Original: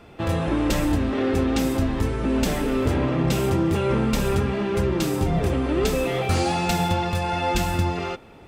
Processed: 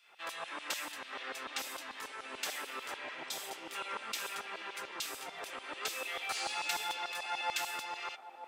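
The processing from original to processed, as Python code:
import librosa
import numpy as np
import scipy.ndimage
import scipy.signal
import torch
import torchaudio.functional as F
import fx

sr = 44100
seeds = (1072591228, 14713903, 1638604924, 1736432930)

y = fx.filter_lfo_highpass(x, sr, shape='saw_down', hz=6.8, low_hz=860.0, high_hz=3600.0, q=1.1)
y = fx.spec_repair(y, sr, seeds[0], start_s=3.06, length_s=0.59, low_hz=970.0, high_hz=3100.0, source='both')
y = fx.echo_wet_bandpass(y, sr, ms=942, feedback_pct=55, hz=490.0, wet_db=-10)
y = y * librosa.db_to_amplitude(-7.5)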